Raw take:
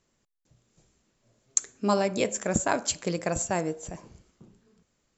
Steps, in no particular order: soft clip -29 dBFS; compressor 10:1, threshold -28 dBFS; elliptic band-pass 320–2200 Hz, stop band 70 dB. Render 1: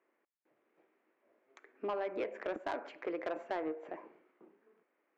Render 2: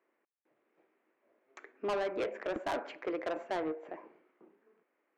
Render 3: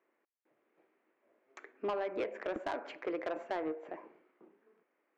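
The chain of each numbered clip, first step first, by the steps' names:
compressor > elliptic band-pass > soft clip; elliptic band-pass > soft clip > compressor; elliptic band-pass > compressor > soft clip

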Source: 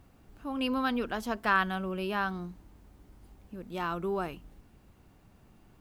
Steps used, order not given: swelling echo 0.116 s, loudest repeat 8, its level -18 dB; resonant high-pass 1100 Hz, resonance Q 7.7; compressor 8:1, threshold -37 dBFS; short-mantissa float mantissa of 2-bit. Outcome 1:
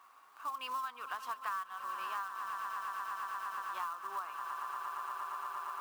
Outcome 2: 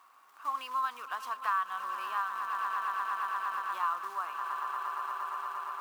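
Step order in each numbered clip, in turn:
resonant high-pass > short-mantissa float > swelling echo > compressor; swelling echo > compressor > short-mantissa float > resonant high-pass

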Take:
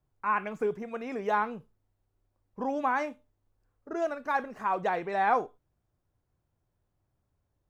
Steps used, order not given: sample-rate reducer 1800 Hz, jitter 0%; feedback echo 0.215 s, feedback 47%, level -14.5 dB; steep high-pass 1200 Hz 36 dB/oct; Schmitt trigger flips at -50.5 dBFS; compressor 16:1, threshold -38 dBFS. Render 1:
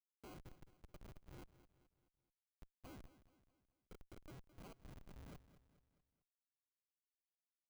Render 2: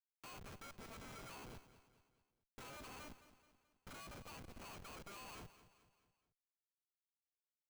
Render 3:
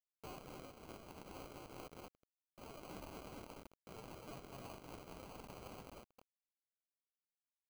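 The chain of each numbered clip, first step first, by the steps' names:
compressor > steep high-pass > sample-rate reducer > Schmitt trigger > feedback echo; sample-rate reducer > compressor > steep high-pass > Schmitt trigger > feedback echo; feedback echo > compressor > Schmitt trigger > steep high-pass > sample-rate reducer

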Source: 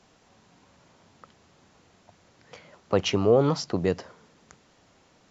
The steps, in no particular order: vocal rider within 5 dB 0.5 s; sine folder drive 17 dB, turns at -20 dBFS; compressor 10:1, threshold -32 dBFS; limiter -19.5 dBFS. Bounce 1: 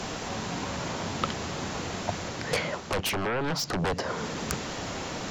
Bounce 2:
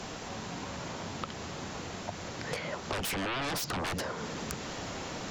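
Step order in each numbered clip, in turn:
compressor > limiter > sine folder > vocal rider; limiter > vocal rider > sine folder > compressor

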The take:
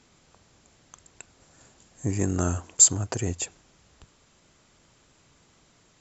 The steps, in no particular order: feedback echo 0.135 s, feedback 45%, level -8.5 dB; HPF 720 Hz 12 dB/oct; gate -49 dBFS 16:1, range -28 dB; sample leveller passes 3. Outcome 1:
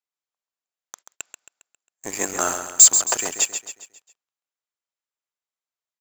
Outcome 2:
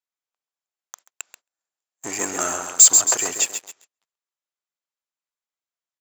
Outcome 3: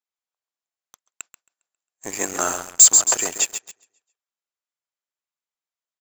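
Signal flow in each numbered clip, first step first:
HPF > sample leveller > gate > feedback echo; feedback echo > sample leveller > gate > HPF; HPF > gate > feedback echo > sample leveller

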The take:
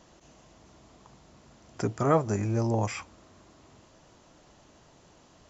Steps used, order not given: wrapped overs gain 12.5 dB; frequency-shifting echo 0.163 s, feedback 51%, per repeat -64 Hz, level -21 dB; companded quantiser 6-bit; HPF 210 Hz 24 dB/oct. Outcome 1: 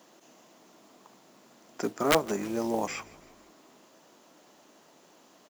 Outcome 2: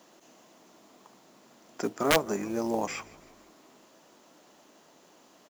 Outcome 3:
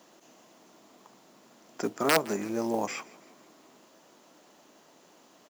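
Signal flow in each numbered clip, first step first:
companded quantiser > HPF > wrapped overs > frequency-shifting echo; HPF > companded quantiser > frequency-shifting echo > wrapped overs; wrapped overs > frequency-shifting echo > HPF > companded quantiser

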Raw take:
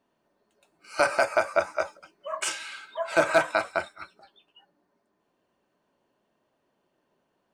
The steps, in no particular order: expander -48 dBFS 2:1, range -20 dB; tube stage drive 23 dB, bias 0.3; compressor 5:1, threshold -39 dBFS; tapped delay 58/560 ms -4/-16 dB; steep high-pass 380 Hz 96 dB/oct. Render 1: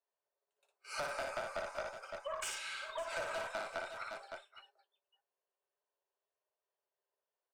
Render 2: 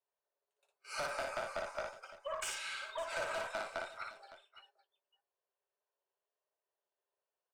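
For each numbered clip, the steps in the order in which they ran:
expander > steep high-pass > tube stage > tapped delay > compressor; steep high-pass > tube stage > compressor > expander > tapped delay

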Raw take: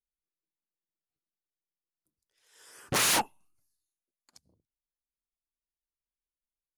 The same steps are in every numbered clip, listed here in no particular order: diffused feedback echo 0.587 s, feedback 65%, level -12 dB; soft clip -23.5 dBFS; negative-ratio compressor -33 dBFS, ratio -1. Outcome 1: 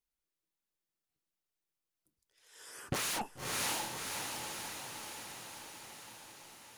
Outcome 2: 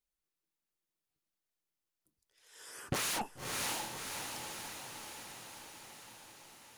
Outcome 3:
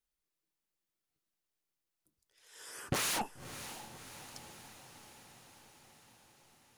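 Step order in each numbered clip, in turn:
diffused feedback echo > soft clip > negative-ratio compressor; soft clip > diffused feedback echo > negative-ratio compressor; soft clip > negative-ratio compressor > diffused feedback echo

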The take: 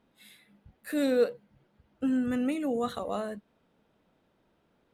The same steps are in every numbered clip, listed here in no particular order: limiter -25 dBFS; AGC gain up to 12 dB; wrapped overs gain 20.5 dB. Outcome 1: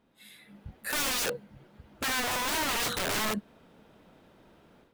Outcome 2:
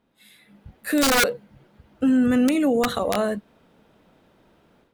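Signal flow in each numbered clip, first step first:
AGC > wrapped overs > limiter; wrapped overs > limiter > AGC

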